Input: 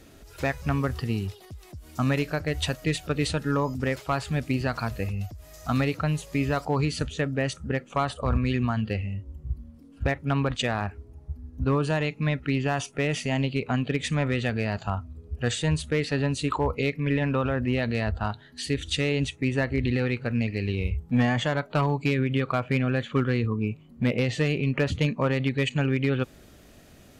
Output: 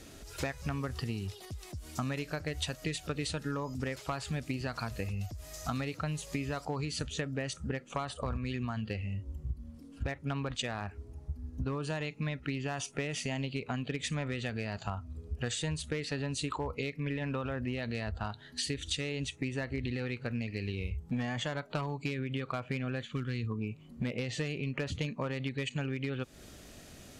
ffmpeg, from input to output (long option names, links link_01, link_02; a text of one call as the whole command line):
ffmpeg -i in.wav -filter_complex "[0:a]asplit=3[link_01][link_02][link_03];[link_01]afade=type=out:start_time=23.05:duration=0.02[link_04];[link_02]equalizer=frequency=700:width_type=o:width=2.4:gain=-12,afade=type=in:start_time=23.05:duration=0.02,afade=type=out:start_time=23.49:duration=0.02[link_05];[link_03]afade=type=in:start_time=23.49:duration=0.02[link_06];[link_04][link_05][link_06]amix=inputs=3:normalize=0,lowpass=7300,aemphasis=mode=production:type=50fm,acompressor=threshold=-32dB:ratio=6" out.wav